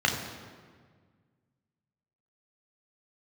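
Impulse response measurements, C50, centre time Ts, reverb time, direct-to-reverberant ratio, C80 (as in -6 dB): 5.5 dB, 43 ms, 1.7 s, 0.5 dB, 7.0 dB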